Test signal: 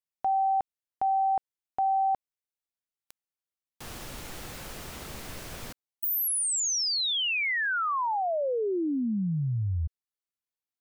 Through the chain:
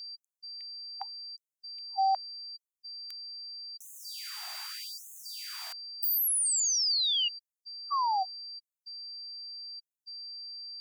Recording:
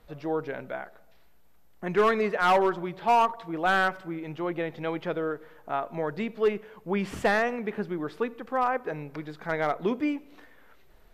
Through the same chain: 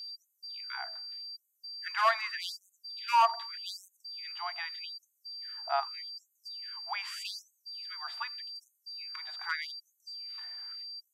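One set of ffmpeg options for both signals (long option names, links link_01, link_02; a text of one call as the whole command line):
ffmpeg -i in.wav -af "aeval=exprs='val(0)+0.01*sin(2*PI*4700*n/s)':channel_layout=same,afftfilt=real='re*gte(b*sr/1024,620*pow(6300/620,0.5+0.5*sin(2*PI*0.83*pts/sr)))':imag='im*gte(b*sr/1024,620*pow(6300/620,0.5+0.5*sin(2*PI*0.83*pts/sr)))':win_size=1024:overlap=0.75" out.wav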